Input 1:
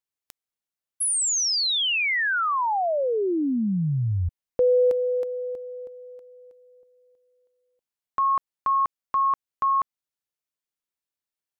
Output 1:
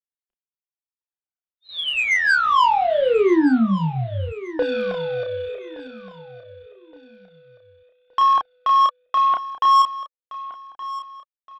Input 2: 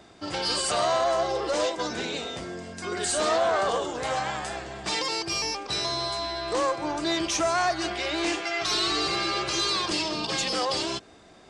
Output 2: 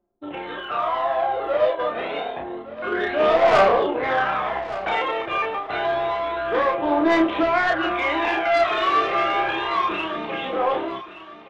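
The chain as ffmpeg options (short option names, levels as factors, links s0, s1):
-filter_complex "[0:a]anlmdn=6.31,acrossover=split=280 2400:gain=0.112 1 0.126[s0][s1][s2];[s0][s1][s2]amix=inputs=3:normalize=0,dynaudnorm=f=340:g=11:m=2.66,aresample=8000,acrusher=bits=6:mode=log:mix=0:aa=0.000001,aresample=44100,aphaser=in_gain=1:out_gain=1:delay=1.8:decay=0.55:speed=0.28:type=triangular,asoftclip=type=tanh:threshold=0.2,asplit=2[s3][s4];[s4]adelay=31,volume=0.668[s5];[s3][s5]amix=inputs=2:normalize=0,asplit=2[s6][s7];[s7]aecho=0:1:1170|2340|3510:0.168|0.0571|0.0194[s8];[s6][s8]amix=inputs=2:normalize=0"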